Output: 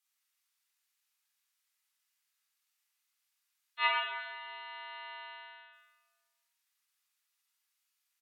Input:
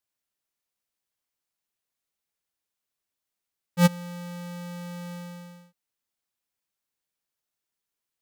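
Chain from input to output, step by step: spectral gate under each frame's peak -30 dB strong; Bessel high-pass 1900 Hz, order 6; pitch shift -4.5 st; shoebox room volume 1300 m³, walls mixed, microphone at 3.9 m

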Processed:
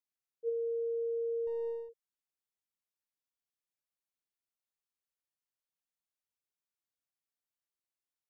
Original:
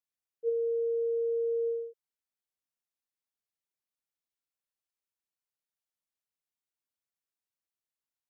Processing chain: 1.47–1.89 half-wave gain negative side -3 dB; gain -4.5 dB

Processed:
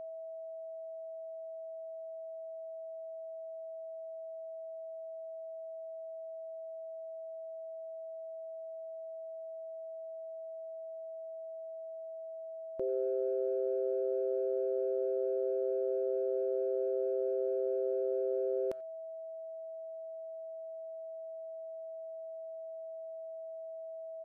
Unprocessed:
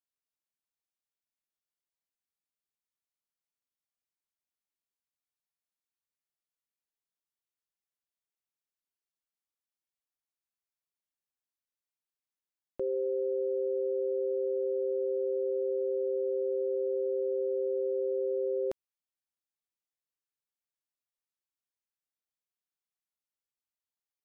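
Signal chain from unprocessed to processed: whine 650 Hz -38 dBFS; speakerphone echo 90 ms, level -23 dB; gain -2.5 dB

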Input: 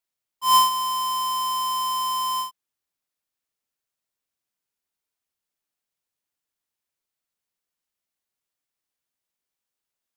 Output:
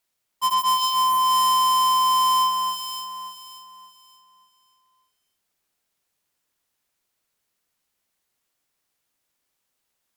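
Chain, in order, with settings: echo with dull and thin repeats by turns 0.29 s, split 2200 Hz, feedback 53%, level -5 dB; sine folder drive 10 dB, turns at -13 dBFS; gain -5 dB

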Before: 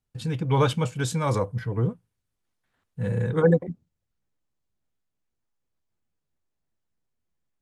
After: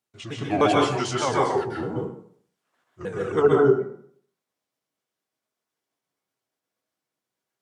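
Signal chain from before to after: repeated pitch sweeps -6.5 st, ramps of 0.305 s; HPF 290 Hz 12 dB/oct; plate-style reverb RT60 0.58 s, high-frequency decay 0.7×, pre-delay 0.115 s, DRR -2.5 dB; gain +3 dB

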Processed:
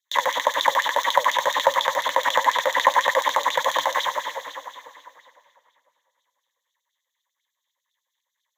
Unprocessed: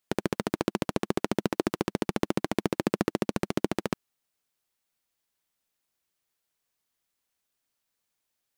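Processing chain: spectral trails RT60 2.49 s; LPF 11000 Hz; tilt -2 dB/oct; notches 50/100/150/200/250/300 Hz; in parallel at -11 dB: decimation with a swept rate 13×, swing 100% 0.3 Hz; on the sum: full-wave rectifier; LFO high-pass sine 10 Hz 810–5000 Hz; flange 1.9 Hz, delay 3.3 ms, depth 7.5 ms, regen +79%; ripple EQ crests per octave 1.1, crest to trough 16 dB; on a send: multi-head echo 66 ms, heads second and third, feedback 57%, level -20 dB; on the sum: LFO bell 4.1 Hz 500–3700 Hz +8 dB; gain +5 dB

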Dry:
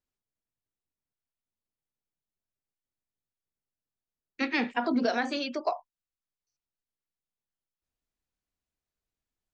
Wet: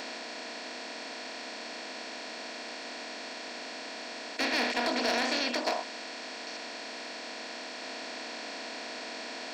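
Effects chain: per-bin compression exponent 0.2; tone controls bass -11 dB, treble +14 dB; hard clip -13.5 dBFS, distortion -22 dB; gain -7.5 dB

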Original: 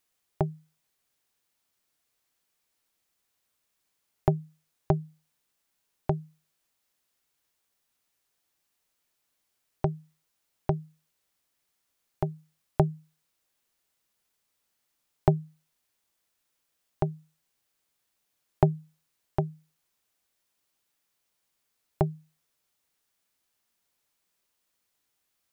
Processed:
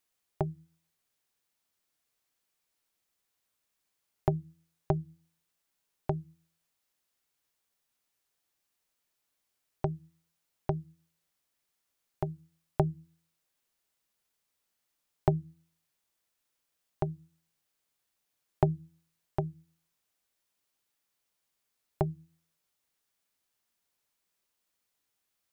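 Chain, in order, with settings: de-hum 81.97 Hz, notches 4; gain -3.5 dB

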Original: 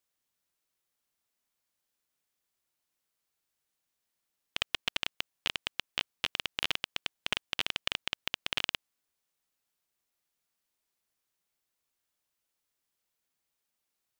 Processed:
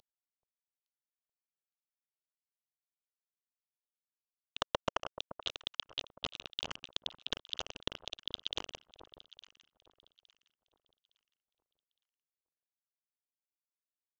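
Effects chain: CVSD 32 kbps; 4.6–5.13 band shelf 870 Hz +10.5 dB; envelope phaser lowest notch 270 Hz, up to 3600 Hz, full sweep at -48.5 dBFS; low shelf 220 Hz -7 dB; echo with dull and thin repeats by turns 0.431 s, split 1300 Hz, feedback 53%, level -12.5 dB; gain +16 dB

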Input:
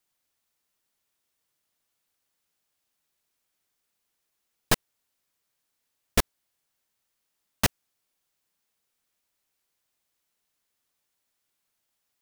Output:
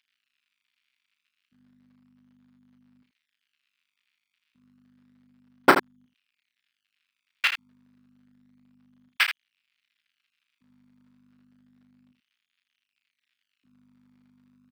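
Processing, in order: CVSD 32 kbps; bell 1700 Hz +14 dB 2.1 oct; hum 60 Hz, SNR 23 dB; varispeed -17%; in parallel at -9 dB: decimation with a swept rate 26×, swing 100% 0.3 Hz; on the sum: LFO high-pass square 0.33 Hz 280–2600 Hz; on a send: early reflections 32 ms -8 dB, 80 ms -9 dB; on the sum: gain -1 dB

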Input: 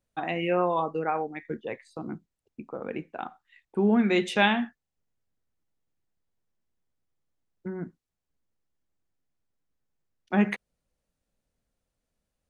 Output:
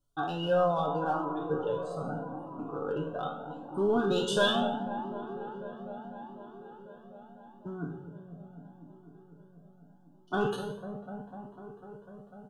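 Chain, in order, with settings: spectral trails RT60 0.62 s; in parallel at -9 dB: overloaded stage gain 21 dB; on the sum: Chebyshev band-stop 1500–3000 Hz, order 3; comb 7 ms, depth 63%; on a send: dark delay 0.249 s, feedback 82%, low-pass 1000 Hz, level -10 dB; on the sum: cascading flanger rising 0.78 Hz

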